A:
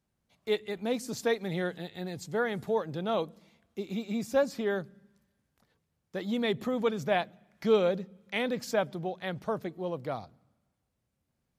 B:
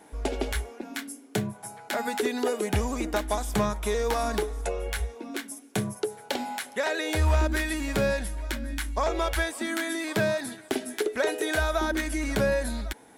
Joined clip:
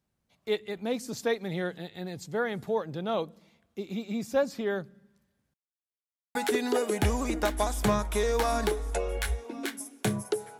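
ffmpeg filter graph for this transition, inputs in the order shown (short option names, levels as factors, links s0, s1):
-filter_complex "[0:a]apad=whole_dur=10.59,atrim=end=10.59,asplit=2[s0][s1];[s0]atrim=end=5.54,asetpts=PTS-STARTPTS,afade=t=out:st=5.536:d=0.004:c=hsin[s2];[s1]atrim=start=5.54:end=6.35,asetpts=PTS-STARTPTS,volume=0[s3];[1:a]atrim=start=2.06:end=6.3,asetpts=PTS-STARTPTS,afade=t=in:d=0.004:c=hsin[s4];[s2][s3][s4]concat=n=3:v=0:a=1"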